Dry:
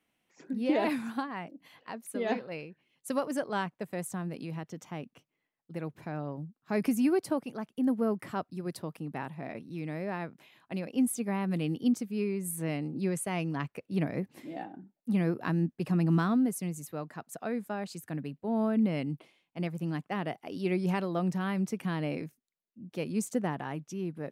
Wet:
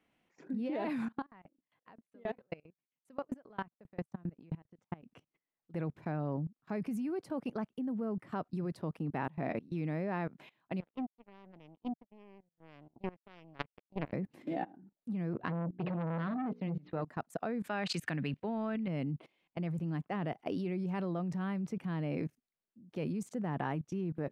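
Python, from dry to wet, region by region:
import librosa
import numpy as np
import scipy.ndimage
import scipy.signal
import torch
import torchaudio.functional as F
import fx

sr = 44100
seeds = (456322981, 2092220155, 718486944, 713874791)

y = fx.chain(x, sr, fx.bass_treble(bass_db=2, treble_db=-7),
    fx.transient(attack_db=-2, sustain_db=-11),
    fx.tremolo_decay(direction='decaying', hz=7.5, depth_db=31), at=(1.05, 5.03))
y = fx.chain(y, sr, fx.lowpass(hz=2900.0, slope=12),
    fx.power_curve(exponent=3.0), at=(10.8, 14.13))
y = fx.chain(y, sr, fx.steep_lowpass(hz=4100.0, slope=48),
    fx.hum_notches(base_hz=60, count=9),
    fx.transformer_sat(knee_hz=940.0), at=(15.33, 17.02))
y = fx.chain(y, sr, fx.peak_eq(hz=2700.0, db=14.5, octaves=2.6),
    fx.over_compress(threshold_db=-28.0, ratio=-0.5), at=(17.64, 18.88))
y = fx.lowpass(y, sr, hz=2200.0, slope=6)
y = fx.dynamic_eq(y, sr, hz=160.0, q=1.7, threshold_db=-39.0, ratio=4.0, max_db=4)
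y = fx.level_steps(y, sr, step_db=21)
y = y * 10.0 ** (7.0 / 20.0)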